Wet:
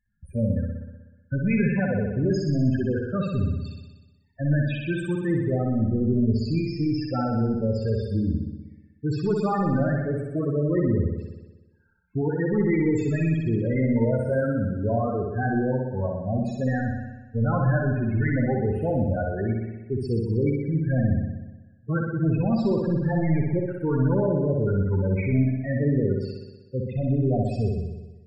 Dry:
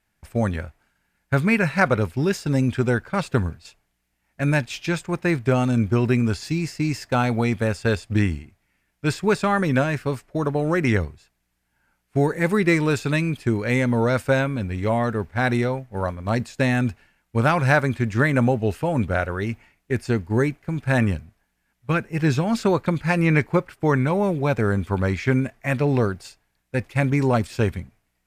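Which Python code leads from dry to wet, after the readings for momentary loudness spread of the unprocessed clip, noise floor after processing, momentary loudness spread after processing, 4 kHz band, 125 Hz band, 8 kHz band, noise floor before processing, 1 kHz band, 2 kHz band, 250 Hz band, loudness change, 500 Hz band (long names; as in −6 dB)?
8 LU, −56 dBFS, 8 LU, below −10 dB, −1.0 dB, below −15 dB, −73 dBFS, −7.5 dB, −10.5 dB, −1.5 dB, −2.5 dB, −3.0 dB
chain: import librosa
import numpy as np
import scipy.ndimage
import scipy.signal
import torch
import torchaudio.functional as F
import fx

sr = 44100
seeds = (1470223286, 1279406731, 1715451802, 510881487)

y = np.clip(10.0 ** (20.5 / 20.0) * x, -1.0, 1.0) / 10.0 ** (20.5 / 20.0)
y = fx.spec_topn(y, sr, count=8)
y = fx.room_flutter(y, sr, wall_m=10.6, rt60_s=1.1)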